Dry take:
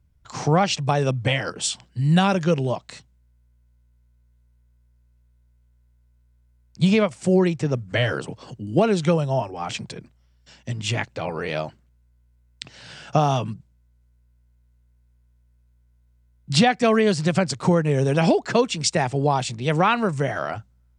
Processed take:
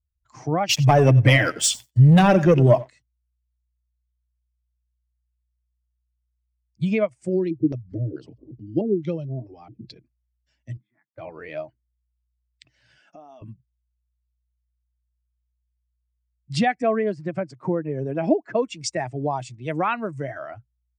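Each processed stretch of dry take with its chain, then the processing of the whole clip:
0.69–2.89 feedback echo 93 ms, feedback 34%, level -15 dB + sample leveller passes 3
7.29–9.98 upward compressor, threshold -24 dBFS + bell 1300 Hz -8 dB 2.1 oct + LFO low-pass square 2.3 Hz 350–4500 Hz
10.77–11.18 Chebyshev band-pass 160–3400 Hz, order 4 + compressor 3:1, threshold -47 dBFS + fixed phaser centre 1200 Hz, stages 4
12.99–13.42 brick-wall FIR high-pass 160 Hz + compressor 3:1, threshold -35 dBFS
16.82–18.62 HPF 130 Hz + high shelf 3200 Hz -11.5 dB
whole clip: per-bin expansion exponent 1.5; thirty-one-band EQ 125 Hz +7 dB, 315 Hz +9 dB, 630 Hz +7 dB, 2000 Hz +6 dB, 4000 Hz -6 dB; gain -3 dB

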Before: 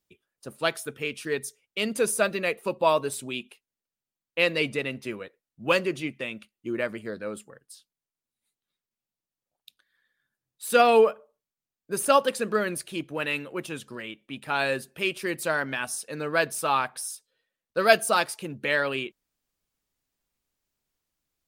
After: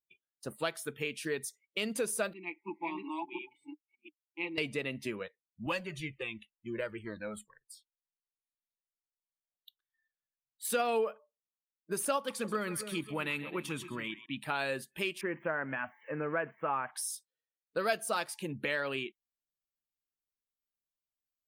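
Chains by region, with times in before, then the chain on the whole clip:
2.33–4.58 reverse delay 0.35 s, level -1 dB + vowel filter u + comb 5.8 ms, depth 70%
5.66–10.65 low shelf 72 Hz +10.5 dB + cascading flanger falling 1.4 Hz
12.17–14.26 comb 0.9 ms, depth 34% + split-band echo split 790 Hz, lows 0.271 s, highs 0.131 s, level -15 dB
15.21–16.91 switching spikes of -26.5 dBFS + inverse Chebyshev low-pass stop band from 4200 Hz
whole clip: spectral noise reduction 21 dB; compressor 2.5:1, threshold -34 dBFS

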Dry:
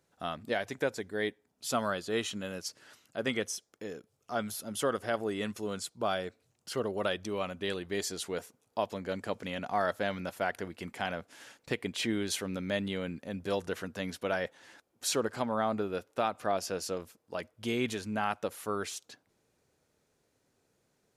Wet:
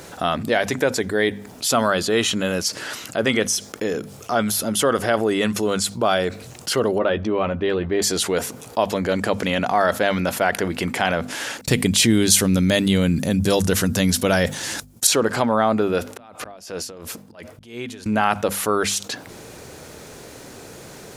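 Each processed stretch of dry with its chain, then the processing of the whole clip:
6.98–8.02 tape spacing loss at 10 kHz 33 dB + doubler 13 ms -10.5 dB
11.61–15.07 expander -57 dBFS + tone controls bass +12 dB, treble +14 dB
16.09–18.06 compressor 4:1, threshold -47 dBFS + auto swell 0.361 s + dB-linear tremolo 2.9 Hz, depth 24 dB
whole clip: notches 50/100/150/200/250 Hz; fast leveller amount 50%; gain +7.5 dB

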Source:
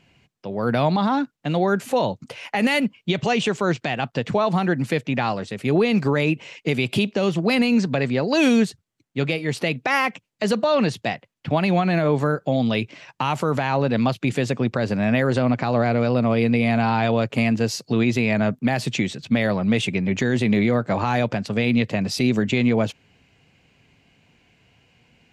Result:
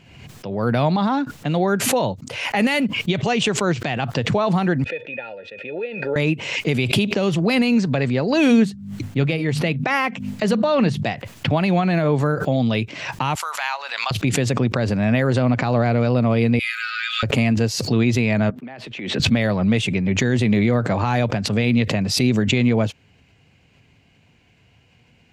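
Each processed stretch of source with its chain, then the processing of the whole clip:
4.84–6.16 vowel filter e + air absorption 95 m + small resonant body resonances 900/1400/2500/3500 Hz, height 18 dB, ringing for 95 ms
8.3–11.04 tone controls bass +4 dB, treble -4 dB + notches 50/100/150/200/250 Hz
13.35–14.11 HPF 880 Hz 24 dB/oct + tilt +2 dB/oct + transient shaper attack +3 dB, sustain -3 dB
16.59–17.23 brick-wall FIR high-pass 1200 Hz + high shelf 6700 Hz +8.5 dB + comb 6.2 ms, depth 81%
18.5–19.2 HPF 130 Hz + three-band isolator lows -12 dB, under 240 Hz, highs -21 dB, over 3400 Hz + compressor 16:1, threshold -32 dBFS
whole clip: bell 88 Hz +6 dB 1.3 oct; backwards sustainer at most 51 dB/s

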